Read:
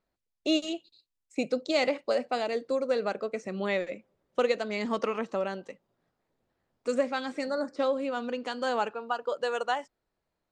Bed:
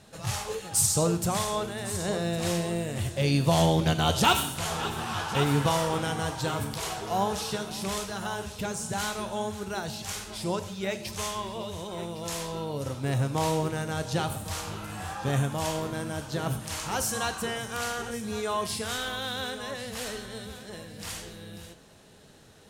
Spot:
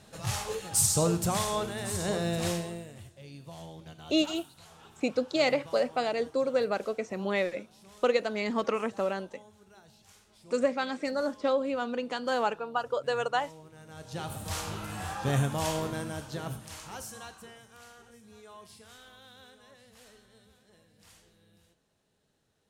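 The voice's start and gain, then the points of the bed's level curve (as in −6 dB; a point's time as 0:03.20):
3.65 s, +0.5 dB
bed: 0:02.45 −1 dB
0:03.21 −23 dB
0:13.67 −23 dB
0:14.51 −0.5 dB
0:15.85 −0.5 dB
0:17.77 −20.5 dB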